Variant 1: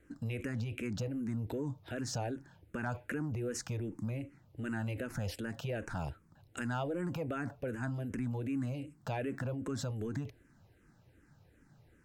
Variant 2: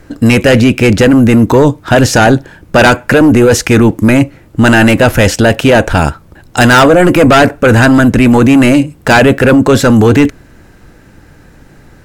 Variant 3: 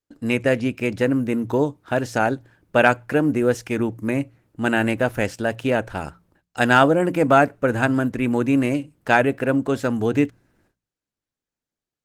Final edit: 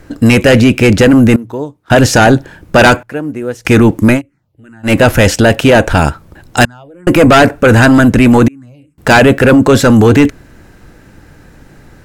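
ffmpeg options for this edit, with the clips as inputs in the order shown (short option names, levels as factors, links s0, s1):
-filter_complex "[2:a]asplit=2[s0][s1];[0:a]asplit=3[s2][s3][s4];[1:a]asplit=6[s5][s6][s7][s8][s9][s10];[s5]atrim=end=1.362[s11];[s0]atrim=start=1.358:end=1.902[s12];[s6]atrim=start=1.898:end=3.032[s13];[s1]atrim=start=3.028:end=3.652[s14];[s7]atrim=start=3.648:end=4.22[s15];[s2]atrim=start=4.12:end=4.93[s16];[s8]atrim=start=4.83:end=6.652[s17];[s3]atrim=start=6.648:end=7.072[s18];[s9]atrim=start=7.068:end=8.482[s19];[s4]atrim=start=8.478:end=8.982[s20];[s10]atrim=start=8.978[s21];[s11][s12]acrossfade=d=0.004:c1=hsin:c2=hsin[s22];[s22][s13]acrossfade=d=0.004:c1=hsin:c2=hsin[s23];[s23][s14]acrossfade=d=0.004:c1=hsin:c2=hsin[s24];[s24][s15]acrossfade=d=0.004:c1=hsin:c2=hsin[s25];[s25][s16]acrossfade=d=0.1:c1=tri:c2=tri[s26];[s26][s17]acrossfade=d=0.1:c1=tri:c2=tri[s27];[s27][s18]acrossfade=d=0.004:c1=hsin:c2=hsin[s28];[s28][s19]acrossfade=d=0.004:c1=hsin:c2=hsin[s29];[s29][s20]acrossfade=d=0.004:c1=hsin:c2=hsin[s30];[s30][s21]acrossfade=d=0.004:c1=hsin:c2=hsin"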